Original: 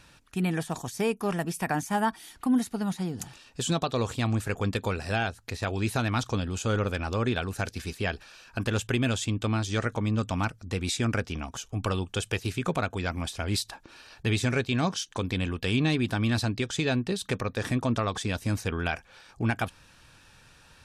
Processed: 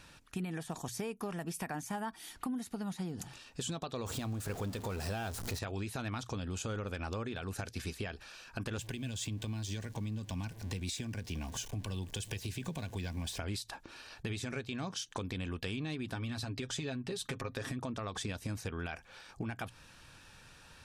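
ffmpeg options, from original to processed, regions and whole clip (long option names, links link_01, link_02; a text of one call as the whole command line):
ffmpeg -i in.wav -filter_complex "[0:a]asettb=1/sr,asplit=3[link_01][link_02][link_03];[link_01]atrim=end=4.064[link_04];[link_02]atrim=start=4.06:end=5.59,asetpts=PTS-STARTPTS,afade=type=in:duration=0.004:curve=qsin,afade=type=out:start_time=1.526:duration=0.004:curve=qsin,aeval=exprs='val(0)+0.5*0.0251*sgn(val(0))':channel_layout=same,equalizer=frequency=2100:width=0.99:gain=-5.5[link_05];[link_03]atrim=start=5.586[link_06];[link_04][link_05]acrossfade=duration=0.004:curve1=hsin:curve2=qsin[link_07];[link_07][link_06]acrossfade=duration=0.004:curve1=qsin:curve2=hsin,asettb=1/sr,asplit=3[link_08][link_09][link_10];[link_08]atrim=end=8.784[link_11];[link_09]atrim=start=8.78:end=13.39,asetpts=PTS-STARTPTS,afade=type=in:duration=0.004:curve=qsin,afade=type=out:start_time=4.606:duration=0.004:curve=qsin,aeval=exprs='val(0)+0.5*0.00841*sgn(val(0))':channel_layout=same,acrossover=split=240|3000[link_12][link_13][link_14];[link_13]acompressor=threshold=-43dB:ratio=2:attack=3.2:release=140:knee=2.83:detection=peak[link_15];[link_12][link_15][link_14]amix=inputs=3:normalize=0,asuperstop=centerf=1300:order=8:qfactor=5.2[link_16];[link_10]atrim=start=13.386[link_17];[link_11][link_16]acrossfade=duration=0.004:curve1=hsin:curve2=qsin[link_18];[link_18][link_17]acrossfade=duration=0.004:curve1=qsin:curve2=hsin,asettb=1/sr,asplit=3[link_19][link_20][link_21];[link_19]atrim=end=16.154[link_22];[link_20]atrim=start=16.15:end=17.79,asetpts=PTS-STARTPTS,afade=type=in:duration=0.004:curve=qsin,afade=type=out:start_time=1.636:duration=0.004:curve=qsin,aecho=1:1:7.4:0.55,atrim=end_sample=72324,acompressor=threshold=-29dB:ratio=2:attack=3.2:release=140:knee=1:detection=peak[link_23];[link_21]atrim=start=17.786[link_24];[link_22][link_23]acrossfade=duration=0.004:curve1=hsin:curve2=qsin[link_25];[link_25][link_24]acrossfade=duration=0.004:curve1=qsin:curve2=hsin,alimiter=limit=-21dB:level=0:latency=1:release=157,acompressor=threshold=-34dB:ratio=6,bandreject=frequency=60:width_type=h:width=6,bandreject=frequency=120:width_type=h:width=6,volume=-1dB" out.wav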